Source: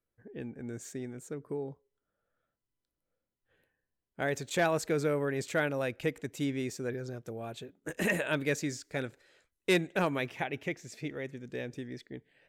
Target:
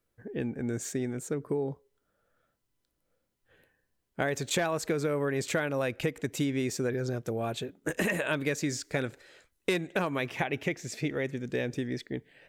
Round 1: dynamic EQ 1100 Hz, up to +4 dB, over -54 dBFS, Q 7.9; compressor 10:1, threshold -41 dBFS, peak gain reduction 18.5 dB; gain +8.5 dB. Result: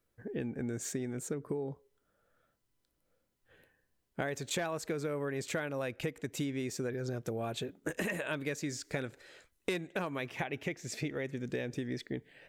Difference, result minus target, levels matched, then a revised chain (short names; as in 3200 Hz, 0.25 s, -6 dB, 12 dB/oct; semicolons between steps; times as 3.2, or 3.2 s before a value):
compressor: peak gain reduction +6.5 dB
dynamic EQ 1100 Hz, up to +4 dB, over -54 dBFS, Q 7.9; compressor 10:1, threshold -34 dBFS, peak gain reduction 12 dB; gain +8.5 dB